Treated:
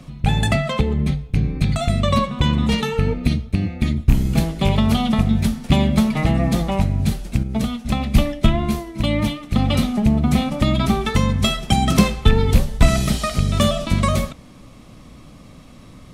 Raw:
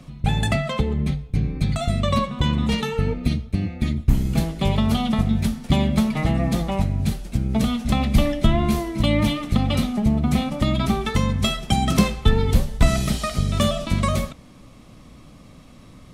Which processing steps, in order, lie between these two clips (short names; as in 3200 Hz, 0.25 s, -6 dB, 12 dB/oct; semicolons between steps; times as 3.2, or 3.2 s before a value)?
rattling part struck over -13 dBFS, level -20 dBFS; 7.43–9.57 upward expander 1.5:1, over -30 dBFS; gain +3 dB